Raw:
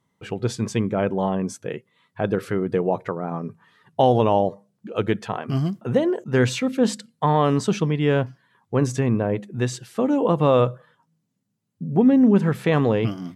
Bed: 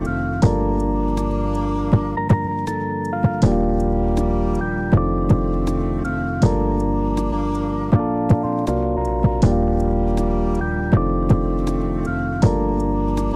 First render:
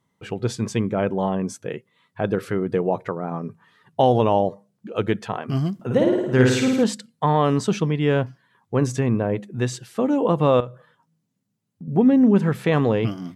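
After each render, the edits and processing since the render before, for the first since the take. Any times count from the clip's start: 5.74–6.84 flutter echo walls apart 9.3 m, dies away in 0.89 s; 10.6–11.88 compressor 2:1, threshold -38 dBFS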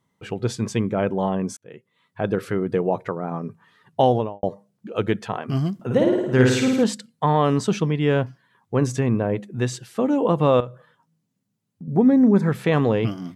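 1.57–2.45 fade in equal-power; 4.03–4.43 studio fade out; 11.87–12.49 Butterworth band-stop 2900 Hz, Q 2.9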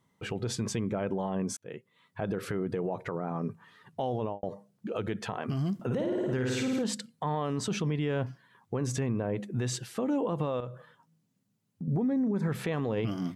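compressor, threshold -21 dBFS, peak gain reduction 10.5 dB; limiter -22.5 dBFS, peak gain reduction 11 dB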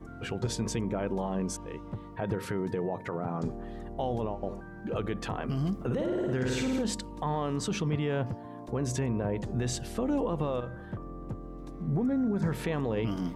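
add bed -22.5 dB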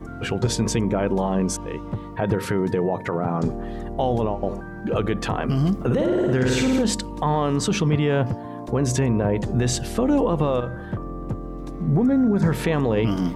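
gain +9.5 dB

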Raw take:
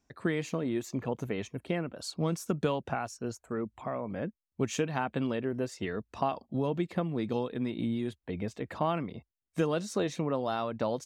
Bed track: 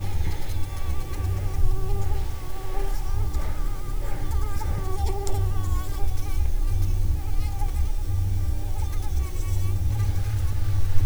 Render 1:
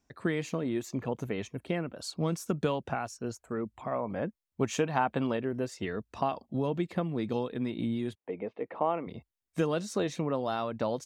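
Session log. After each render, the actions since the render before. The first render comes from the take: 3.91–5.37 dynamic EQ 860 Hz, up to +6 dB, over -46 dBFS, Q 1; 8.15–9.07 speaker cabinet 290–2400 Hz, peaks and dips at 480 Hz +6 dB, 820 Hz +3 dB, 1600 Hz -9 dB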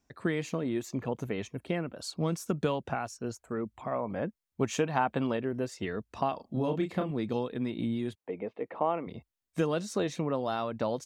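6.36–7.11 doubler 32 ms -5 dB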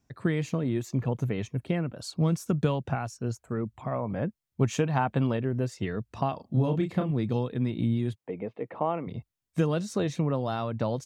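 bell 120 Hz +11.5 dB 1.2 oct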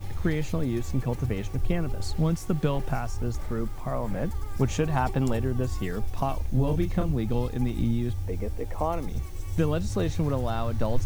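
add bed track -7.5 dB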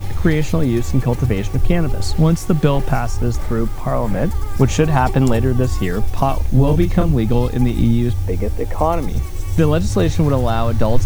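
gain +11 dB; limiter -2 dBFS, peak gain reduction 1.5 dB

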